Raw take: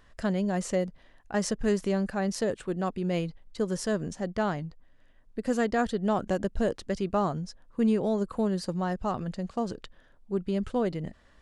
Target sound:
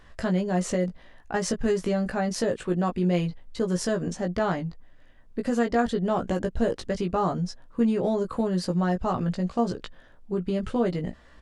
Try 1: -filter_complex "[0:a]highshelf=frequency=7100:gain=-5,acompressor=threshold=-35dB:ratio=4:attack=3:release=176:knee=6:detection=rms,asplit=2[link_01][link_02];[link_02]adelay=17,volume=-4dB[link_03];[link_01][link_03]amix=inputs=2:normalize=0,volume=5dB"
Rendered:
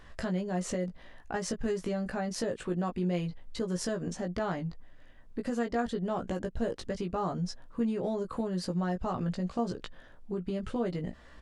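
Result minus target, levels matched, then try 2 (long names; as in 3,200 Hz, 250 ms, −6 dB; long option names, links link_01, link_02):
downward compressor: peak gain reduction +7.5 dB
-filter_complex "[0:a]highshelf=frequency=7100:gain=-5,acompressor=threshold=-25dB:ratio=4:attack=3:release=176:knee=6:detection=rms,asplit=2[link_01][link_02];[link_02]adelay=17,volume=-4dB[link_03];[link_01][link_03]amix=inputs=2:normalize=0,volume=5dB"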